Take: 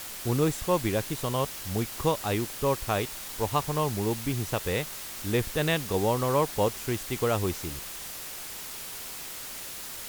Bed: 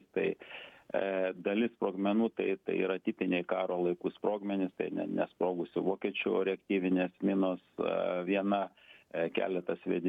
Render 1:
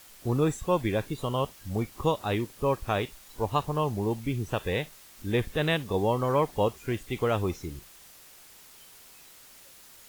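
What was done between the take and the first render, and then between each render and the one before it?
noise print and reduce 13 dB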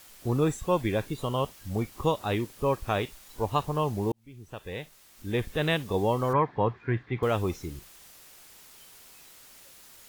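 4.12–5.69 s: fade in; 6.33–7.23 s: cabinet simulation 100–3100 Hz, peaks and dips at 120 Hz +8 dB, 580 Hz -5 dB, 1 kHz +4 dB, 1.7 kHz +8 dB, 2.9 kHz -10 dB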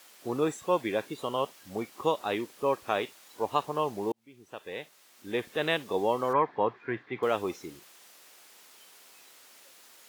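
high-pass 300 Hz 12 dB/octave; treble shelf 7.5 kHz -5.5 dB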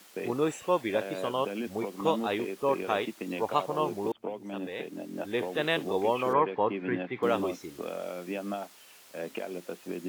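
add bed -4.5 dB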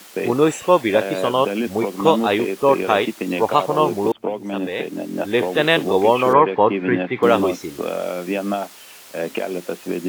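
trim +12 dB; peak limiter -1 dBFS, peak gain reduction 2 dB

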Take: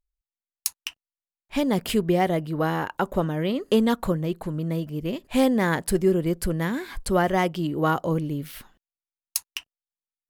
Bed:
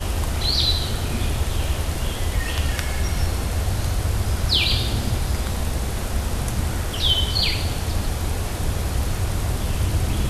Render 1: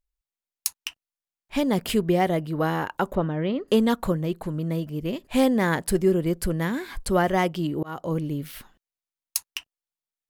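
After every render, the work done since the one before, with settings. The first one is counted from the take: 3.15–3.68 s: distance through air 230 m; 7.83–8.35 s: fade in equal-power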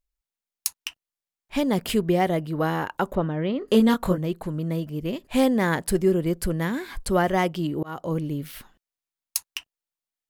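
3.59–4.18 s: doubling 22 ms -4 dB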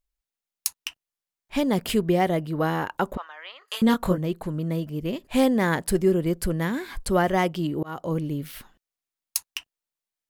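3.17–3.82 s: high-pass 980 Hz 24 dB/octave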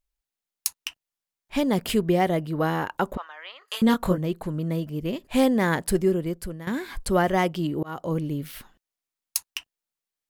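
5.95–6.67 s: fade out, to -15 dB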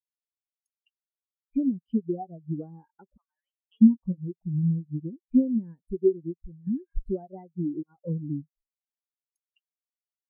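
compression 12:1, threshold -28 dBFS, peak gain reduction 14 dB; spectral contrast expander 4:1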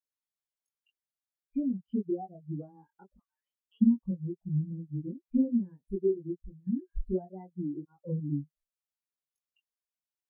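chorus voices 2, 0.49 Hz, delay 21 ms, depth 1 ms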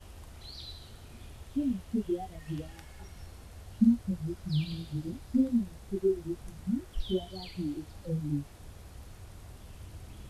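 add bed -25 dB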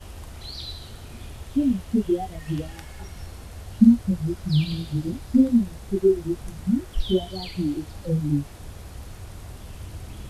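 trim +9 dB

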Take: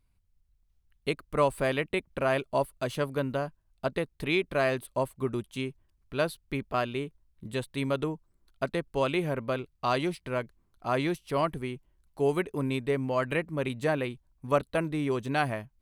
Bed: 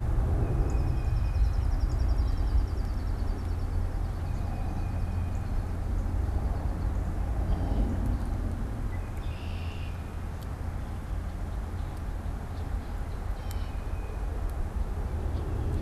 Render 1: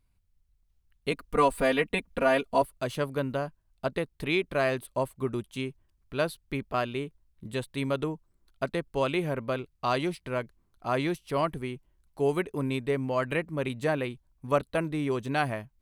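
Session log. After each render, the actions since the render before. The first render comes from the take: 1.11–2.62 s: comb 4.2 ms, depth 100%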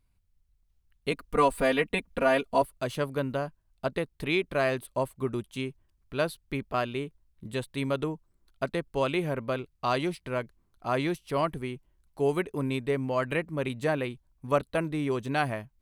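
no audible change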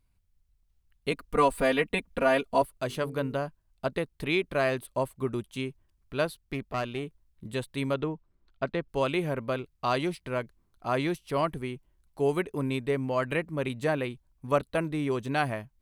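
2.70–3.34 s: de-hum 49.29 Hz, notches 9; 6.25–7.03 s: valve stage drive 21 dB, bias 0.45; 7.94–8.89 s: low-pass 3.9 kHz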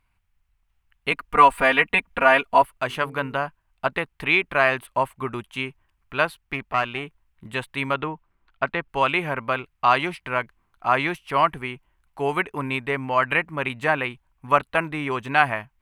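high-order bell 1.5 kHz +12 dB 2.3 oct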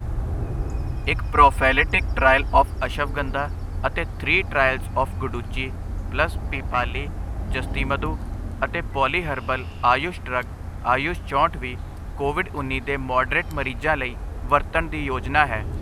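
add bed +0.5 dB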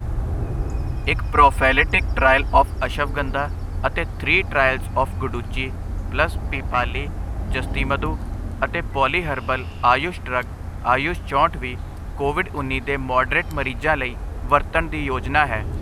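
trim +2 dB; peak limiter -2 dBFS, peak gain reduction 3 dB

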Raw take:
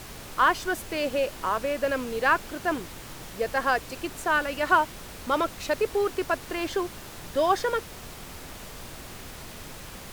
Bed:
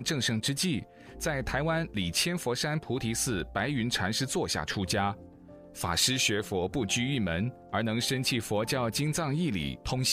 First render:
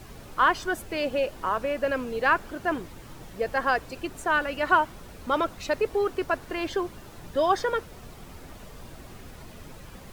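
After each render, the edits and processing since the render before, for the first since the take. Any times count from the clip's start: noise reduction 9 dB, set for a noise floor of -42 dBFS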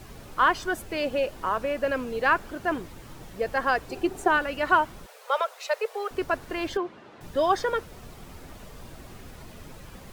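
3.89–4.37 s: small resonant body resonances 380/760 Hz, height 13 dB; 5.06–6.11 s: steep high-pass 440 Hz 72 dB/octave; 6.77–7.21 s: band-pass 220–3000 Hz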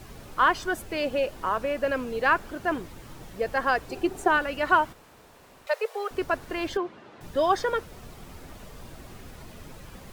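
4.93–5.67 s: room tone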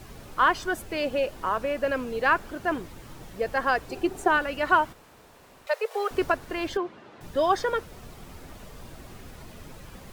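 5.91–6.32 s: gain +3.5 dB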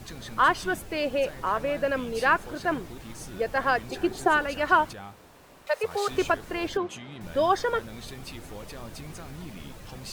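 add bed -13.5 dB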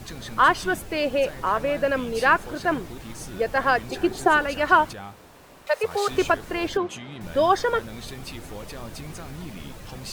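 trim +3.5 dB

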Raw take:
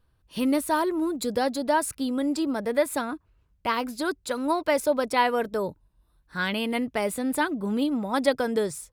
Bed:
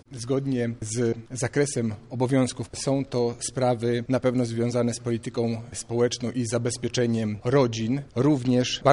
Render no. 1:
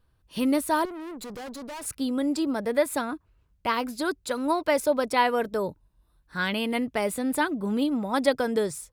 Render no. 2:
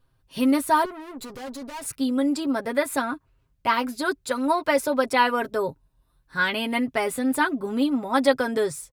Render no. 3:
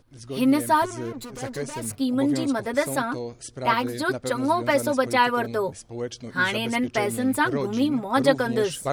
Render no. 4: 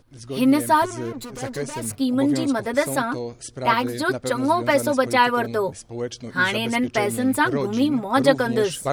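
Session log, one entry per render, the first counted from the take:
0.85–1.86 s: valve stage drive 36 dB, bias 0.7
dynamic bell 1.4 kHz, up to +4 dB, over -37 dBFS, Q 0.88; comb 7.5 ms, depth 61%
add bed -8.5 dB
trim +2.5 dB

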